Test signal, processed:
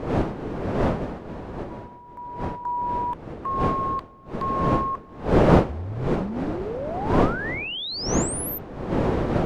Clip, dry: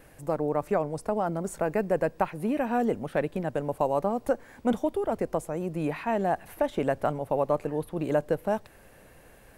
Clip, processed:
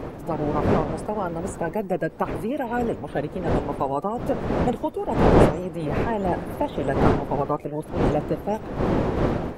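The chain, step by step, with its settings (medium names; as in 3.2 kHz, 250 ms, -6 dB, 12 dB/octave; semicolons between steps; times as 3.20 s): coarse spectral quantiser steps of 30 dB; wind noise 480 Hz -27 dBFS; trim +1.5 dB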